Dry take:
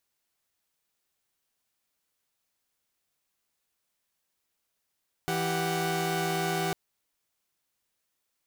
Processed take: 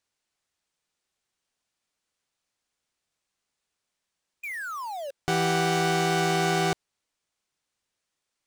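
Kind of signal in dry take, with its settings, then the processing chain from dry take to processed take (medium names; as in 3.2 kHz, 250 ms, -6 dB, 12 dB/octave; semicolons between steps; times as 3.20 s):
chord E3/G4/F#5 saw, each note -29 dBFS 1.45 s
painted sound fall, 4.43–5.11 s, 530–2500 Hz -40 dBFS; Savitzky-Golay filter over 9 samples; in parallel at -2 dB: bit crusher 7-bit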